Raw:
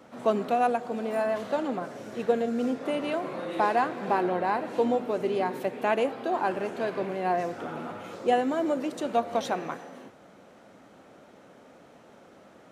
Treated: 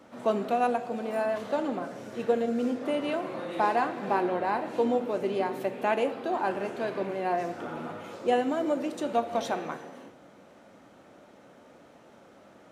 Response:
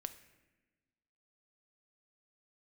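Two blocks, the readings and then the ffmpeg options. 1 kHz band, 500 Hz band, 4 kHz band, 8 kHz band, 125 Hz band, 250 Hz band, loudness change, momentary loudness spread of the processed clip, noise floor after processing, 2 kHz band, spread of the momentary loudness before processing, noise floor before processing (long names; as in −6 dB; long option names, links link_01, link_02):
−1.5 dB, −1.0 dB, −1.0 dB, can't be measured, −2.0 dB, −0.5 dB, −1.0 dB, 9 LU, −55 dBFS, −1.0 dB, 9 LU, −54 dBFS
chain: -filter_complex "[1:a]atrim=start_sample=2205,asetrate=66150,aresample=44100[link_01];[0:a][link_01]afir=irnorm=-1:irlink=0,volume=5.5dB"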